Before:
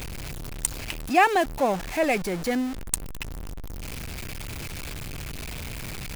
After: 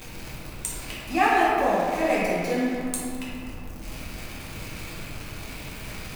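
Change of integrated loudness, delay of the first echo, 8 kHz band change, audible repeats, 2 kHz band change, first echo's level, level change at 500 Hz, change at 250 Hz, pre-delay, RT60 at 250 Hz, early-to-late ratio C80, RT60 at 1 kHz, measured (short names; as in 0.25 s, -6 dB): +1.0 dB, none, -3.0 dB, none, +0.5 dB, none, +1.0 dB, +1.0 dB, 5 ms, 3.0 s, -1.0 dB, 2.3 s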